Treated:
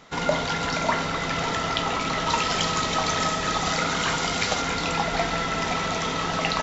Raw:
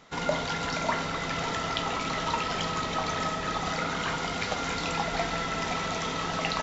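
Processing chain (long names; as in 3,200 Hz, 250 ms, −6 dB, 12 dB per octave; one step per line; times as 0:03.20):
0:02.29–0:04.62: high-shelf EQ 4,800 Hz +9.5 dB
level +4.5 dB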